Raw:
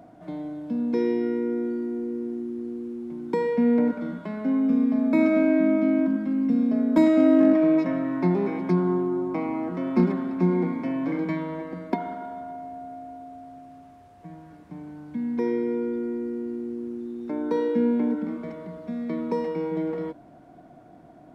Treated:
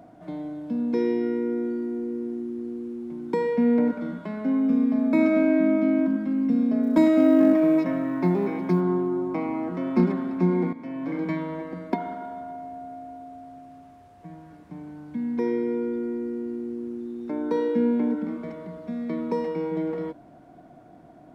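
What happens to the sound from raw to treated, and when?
6.83–8.81 s: short-mantissa float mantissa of 6-bit
10.73–11.30 s: fade in, from -12 dB

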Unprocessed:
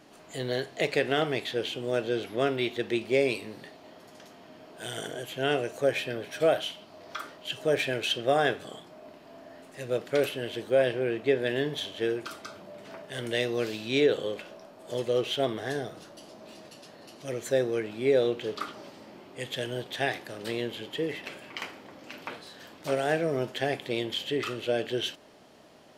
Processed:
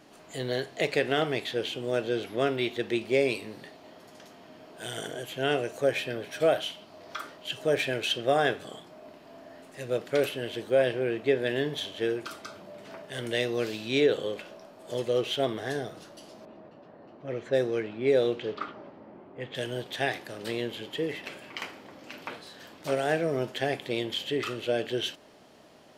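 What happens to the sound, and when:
16.45–19.55 s: level-controlled noise filter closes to 1.1 kHz, open at -20.5 dBFS

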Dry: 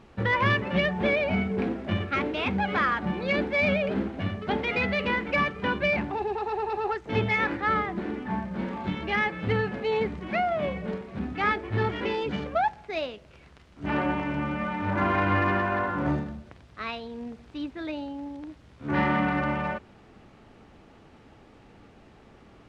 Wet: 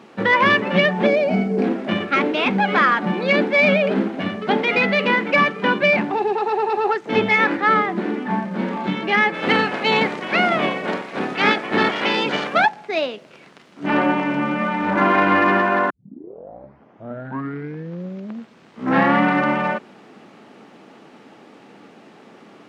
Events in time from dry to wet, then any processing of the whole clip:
1.06–1.64 s: time-frequency box 820–4100 Hz -8 dB
9.33–12.65 s: spectral peaks clipped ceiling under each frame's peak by 17 dB
15.90 s: tape start 3.35 s
whole clip: high-pass 180 Hz 24 dB/octave; trim +9 dB

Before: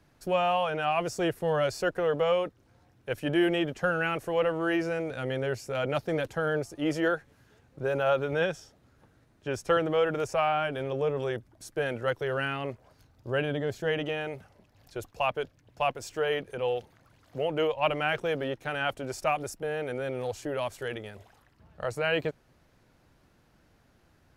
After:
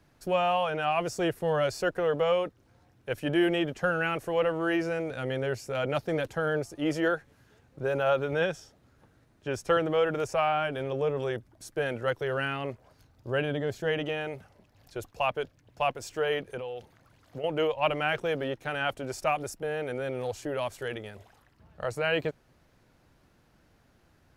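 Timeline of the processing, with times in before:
16.57–17.44 s: compression 10:1, threshold -33 dBFS

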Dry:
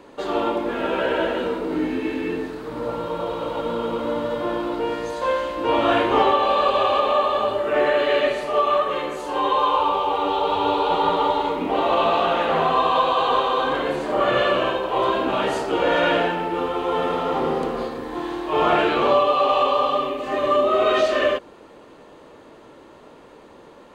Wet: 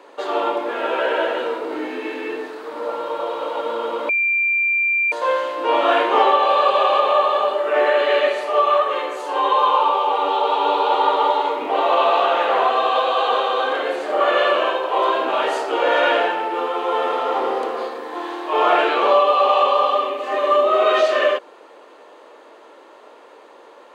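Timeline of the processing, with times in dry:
4.09–5.12 s: bleep 2.37 kHz -18 dBFS
12.69–14.21 s: band-stop 1 kHz, Q 5.8
whole clip: Bessel high-pass 590 Hz, order 4; tilt EQ -1.5 dB/octave; trim +4.5 dB

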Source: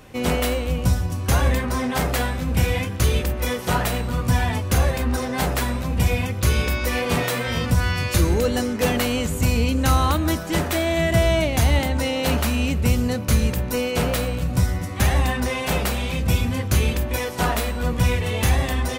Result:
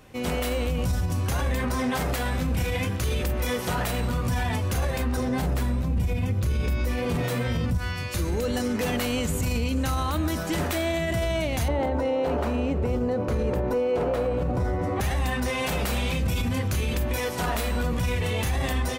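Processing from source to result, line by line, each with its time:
5.17–7.78 s: bass shelf 430 Hz +11.5 dB
11.68–15.01 s: FFT filter 210 Hz 0 dB, 380 Hz +12 dB, 930 Hz +7 dB, 2.7 kHz -6 dB, 14 kHz -17 dB
whole clip: level rider; peak limiter -12.5 dBFS; trim -5.5 dB

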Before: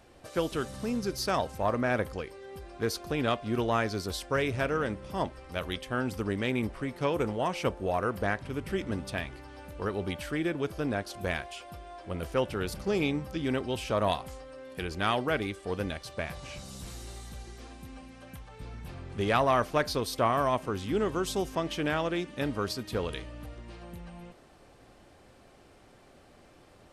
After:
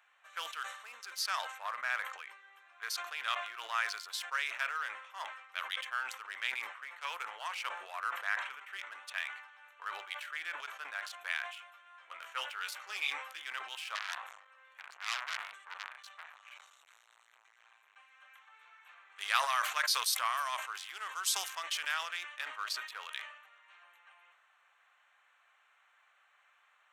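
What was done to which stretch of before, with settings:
11.73–13.42 s: doubling 15 ms -5 dB
13.95–17.96 s: transformer saturation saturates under 4 kHz
19.16–22.17 s: tone controls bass -7 dB, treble +8 dB
whole clip: local Wiener filter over 9 samples; high-pass 1.2 kHz 24 dB/octave; decay stretcher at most 73 dB/s

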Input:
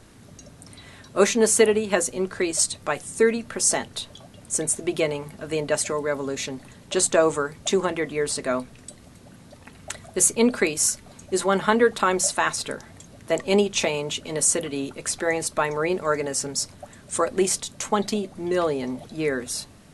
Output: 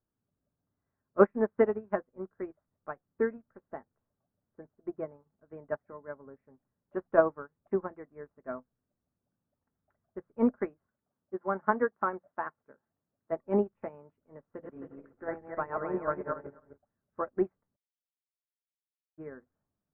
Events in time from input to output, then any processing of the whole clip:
4.67–5.45 s: treble shelf 2.8 kHz -11 dB
10.91–13.31 s: high-pass 160 Hz 6 dB/octave
14.49–16.78 s: backward echo that repeats 132 ms, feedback 53%, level -1 dB
17.76–19.18 s: brick-wall FIR high-pass 3 kHz
whole clip: steep low-pass 1.6 kHz 36 dB/octave; dynamic bell 460 Hz, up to -4 dB, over -32 dBFS, Q 5; upward expansion 2.5:1, over -39 dBFS

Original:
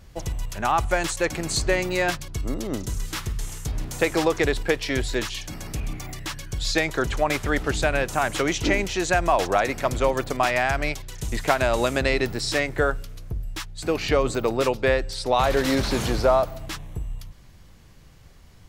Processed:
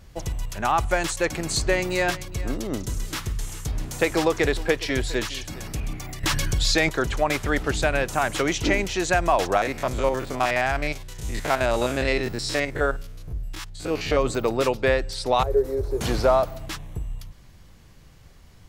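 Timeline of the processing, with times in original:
1.33–5.68 s: delay 412 ms -17.5 dB
6.23–6.89 s: level flattener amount 70%
9.57–14.17 s: spectrogram pixelated in time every 50 ms
15.43–16.01 s: FFT filter 100 Hz 0 dB, 180 Hz -24 dB, 290 Hz -14 dB, 410 Hz +5 dB, 610 Hz -11 dB, 3.1 kHz -29 dB, 14 kHz -10 dB

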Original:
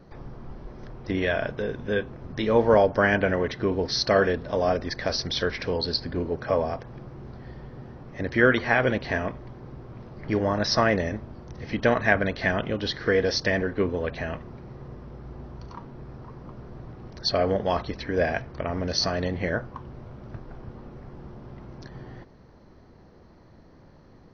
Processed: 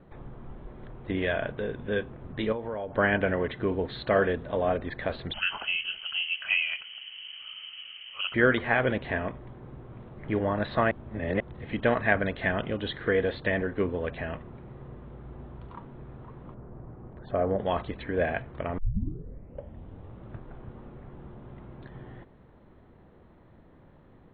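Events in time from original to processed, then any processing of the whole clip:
2.52–2.98 s: compression, threshold -28 dBFS
5.33–8.34 s: frequency inversion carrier 3.1 kHz
10.91–11.40 s: reverse
16.54–17.59 s: low-pass 1.3 kHz
18.78 s: tape start 1.54 s
whole clip: steep low-pass 3.8 kHz 96 dB/octave; trim -3 dB

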